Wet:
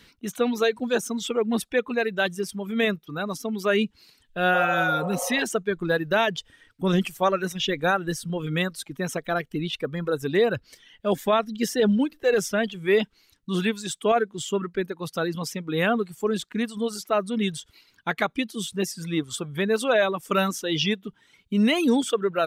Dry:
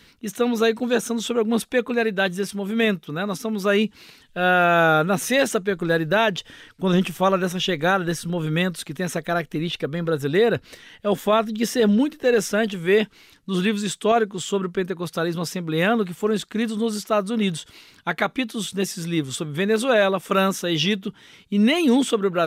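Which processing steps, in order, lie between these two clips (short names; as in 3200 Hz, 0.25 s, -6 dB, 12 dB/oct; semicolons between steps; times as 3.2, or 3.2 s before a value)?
reverb removal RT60 1.4 s; spectral repair 4.57–5.4, 460–1300 Hz both; gain -2 dB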